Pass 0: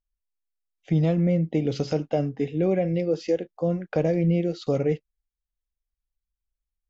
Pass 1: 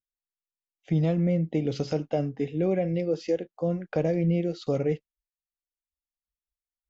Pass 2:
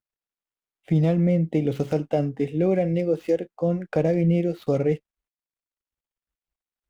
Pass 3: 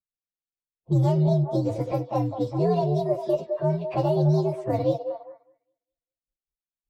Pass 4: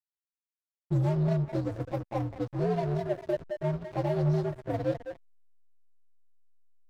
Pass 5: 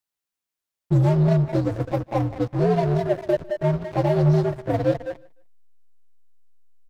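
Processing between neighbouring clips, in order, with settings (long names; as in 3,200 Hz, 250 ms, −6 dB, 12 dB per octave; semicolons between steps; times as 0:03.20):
noise reduction from a noise print of the clip's start 19 dB; level −2.5 dB
running median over 9 samples; level +4 dB
partials spread apart or drawn together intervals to 128%; echo through a band-pass that steps 203 ms, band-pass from 580 Hz, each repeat 0.7 octaves, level −5.5 dB; low-pass that shuts in the quiet parts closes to 380 Hz, open at −21.5 dBFS
slack as between gear wheels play −25 dBFS; level −5 dB
repeating echo 151 ms, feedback 28%, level −23 dB; level +8.5 dB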